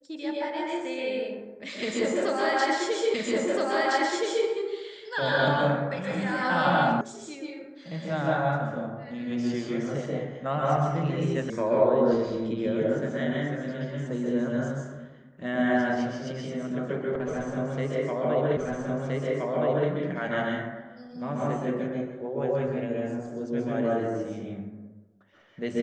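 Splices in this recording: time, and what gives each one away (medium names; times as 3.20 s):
3.14 s: repeat of the last 1.32 s
7.01 s: sound stops dead
11.50 s: sound stops dead
18.57 s: repeat of the last 1.32 s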